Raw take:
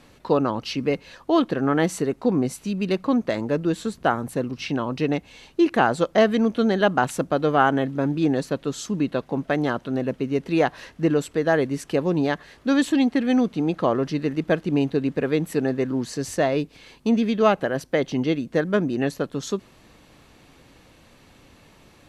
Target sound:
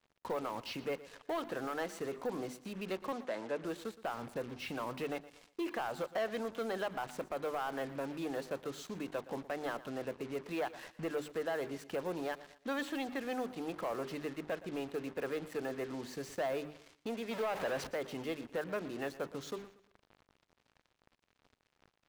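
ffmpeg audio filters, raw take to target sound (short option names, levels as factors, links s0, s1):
-filter_complex "[0:a]asettb=1/sr,asplit=3[s0][s1][s2];[s0]atrim=end=17.314[s3];[s1]atrim=start=17.31:end=17.87,asetpts=PTS-STARTPTS,afade=t=in:d=0.004:c=qsin,afade=t=out:st=0.556:d=0.004:c=qsin,aeval=exprs='val(0)+0.5*0.0708*sgn(val(0))':c=same[s4];[s2]atrim=start=17.866[s5];[s3][s4]acrossfade=d=0.004:c1=hsin:c2=qsin[s6];[s6][s5]acrossfade=d=0.004:c1=qsin:c2=hsin,aemphasis=mode=reproduction:type=75fm,bandreject=f=50:t=h:w=6,bandreject=f=100:t=h:w=6,bandreject=f=150:t=h:w=6,bandreject=f=200:t=h:w=6,bandreject=f=250:t=h:w=6,bandreject=f=300:t=h:w=6,bandreject=f=350:t=h:w=6,bandreject=f=400:t=h:w=6,acrossover=split=470|5500[s7][s8][s9];[s7]acompressor=threshold=0.0158:ratio=10[s10];[s10][s8][s9]amix=inputs=3:normalize=0,alimiter=limit=0.15:level=0:latency=1:release=130,acrusher=bits=6:mix=0:aa=0.5,asoftclip=type=tanh:threshold=0.075,asettb=1/sr,asplit=3[s11][s12][s13];[s11]atrim=end=3.124[s14];[s12]atrim=start=3.12:end=3.64,asetpts=PTS-STARTPTS,afade=t=in:d=0.004:c=qsin,afade=t=out:st=0.516:d=0.004:c=qsin,highpass=200,lowpass=7800[s15];[s13]atrim=start=3.636[s16];[s14][s15]acrossfade=d=0.004:c1=hsin:c2=qsin[s17];[s17][s16]acrossfade=d=0.004:c1=qsin:c2=hsin,aecho=1:1:118|236|354:0.141|0.048|0.0163,volume=0.447"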